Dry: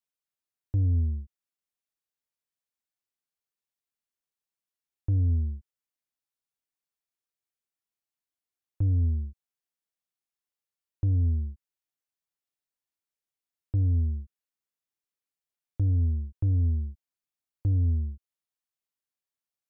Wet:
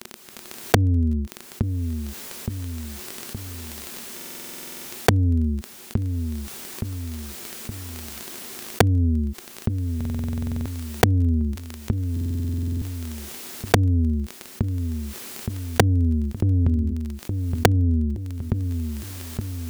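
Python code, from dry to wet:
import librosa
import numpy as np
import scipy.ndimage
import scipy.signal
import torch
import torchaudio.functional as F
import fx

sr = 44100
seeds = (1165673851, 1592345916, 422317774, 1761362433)

y = fx.recorder_agc(x, sr, target_db=-29.0, rise_db_per_s=44.0, max_gain_db=30)
y = fx.highpass(y, sr, hz=82.0, slope=6)
y = 10.0 ** (-7.5 / 20.0) * np.tanh(y / 10.0 ** (-7.5 / 20.0))
y = fx.echo_feedback(y, sr, ms=869, feedback_pct=30, wet_db=-13.0)
y = fx.dmg_crackle(y, sr, seeds[0], per_s=16.0, level_db=-41.0)
y = fx.small_body(y, sr, hz=(230.0, 360.0), ring_ms=50, db=11)
y = (np.mod(10.0 ** (4.5 / 20.0) * y + 1.0, 2.0) - 1.0) / 10.0 ** (4.5 / 20.0)
y = fx.buffer_glitch(y, sr, at_s=(4.16, 9.96, 12.12), block=2048, repeats=14)
y = fx.env_flatten(y, sr, amount_pct=50)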